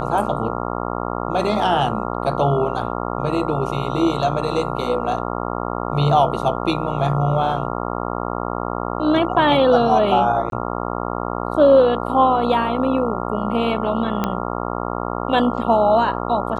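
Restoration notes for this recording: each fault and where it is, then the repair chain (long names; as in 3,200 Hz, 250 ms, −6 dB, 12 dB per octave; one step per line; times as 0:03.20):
mains buzz 60 Hz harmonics 23 −25 dBFS
0:10.50–0:10.52: drop-out 22 ms
0:14.24: click −7 dBFS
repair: click removal
hum removal 60 Hz, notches 23
repair the gap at 0:10.50, 22 ms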